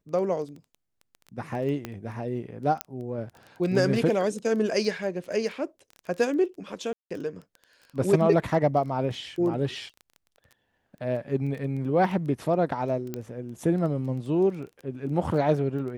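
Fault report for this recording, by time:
crackle 11 per s -34 dBFS
1.85 s: pop -18 dBFS
2.81 s: pop -10 dBFS
6.93–7.11 s: dropout 176 ms
13.14 s: pop -18 dBFS

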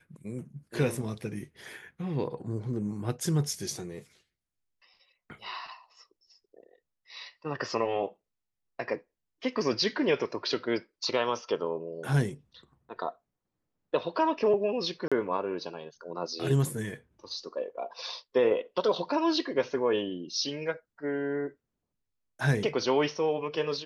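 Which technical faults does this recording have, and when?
15.08–15.12 s: dropout 36 ms

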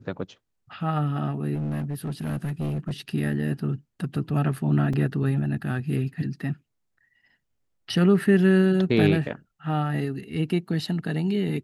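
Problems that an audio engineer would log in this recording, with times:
1.54–2.92 s: clipped -24.5 dBFS
4.93 s: dropout 3.8 ms

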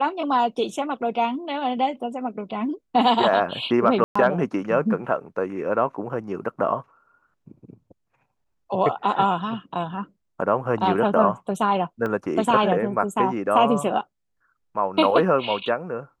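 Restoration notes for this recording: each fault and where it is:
4.04–4.16 s: dropout 115 ms
12.06 s: dropout 3.1 ms

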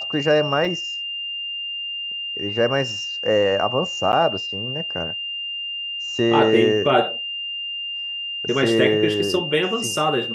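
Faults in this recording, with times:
whine 2.8 kHz -26 dBFS
0.65 s: dropout 3.3 ms
4.12–4.13 s: dropout 9.5 ms

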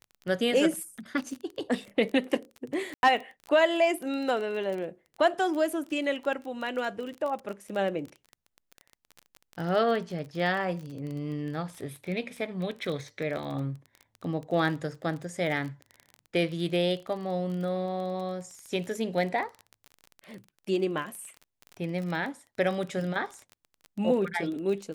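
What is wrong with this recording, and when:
crackle 24 per s -34 dBFS
2.94–3.03 s: dropout 91 ms

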